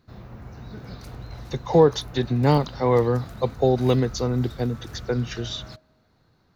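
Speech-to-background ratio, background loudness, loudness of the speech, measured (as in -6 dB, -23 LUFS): 17.0 dB, -40.0 LUFS, -23.0 LUFS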